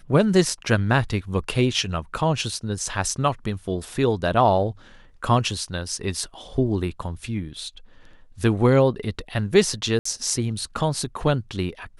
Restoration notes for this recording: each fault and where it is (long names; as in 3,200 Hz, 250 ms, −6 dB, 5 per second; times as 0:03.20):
0:09.99–0:10.05: drop-out 64 ms